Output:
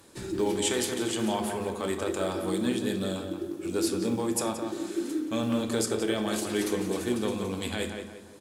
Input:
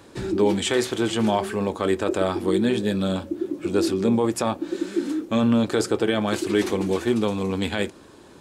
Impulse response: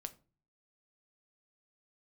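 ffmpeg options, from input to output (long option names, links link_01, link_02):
-filter_complex "[0:a]aemphasis=mode=production:type=50fm,acrusher=bits=7:mode=log:mix=0:aa=0.000001,asplit=2[link_01][link_02];[link_02]adelay=176,lowpass=frequency=2700:poles=1,volume=-5.5dB,asplit=2[link_03][link_04];[link_04]adelay=176,lowpass=frequency=2700:poles=1,volume=0.41,asplit=2[link_05][link_06];[link_06]adelay=176,lowpass=frequency=2700:poles=1,volume=0.41,asplit=2[link_07][link_08];[link_08]adelay=176,lowpass=frequency=2700:poles=1,volume=0.41,asplit=2[link_09][link_10];[link_10]adelay=176,lowpass=frequency=2700:poles=1,volume=0.41[link_11];[link_01][link_03][link_05][link_07][link_09][link_11]amix=inputs=6:normalize=0[link_12];[1:a]atrim=start_sample=2205,asetrate=23373,aresample=44100[link_13];[link_12][link_13]afir=irnorm=-1:irlink=0,volume=-7.5dB"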